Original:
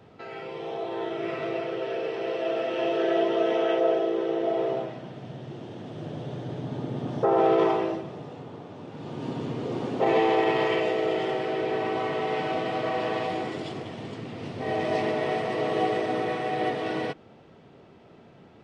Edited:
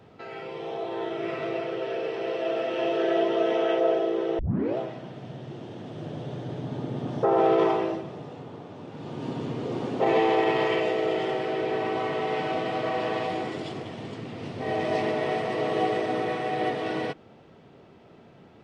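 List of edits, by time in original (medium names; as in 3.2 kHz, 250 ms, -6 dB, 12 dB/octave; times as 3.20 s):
4.39 s: tape start 0.38 s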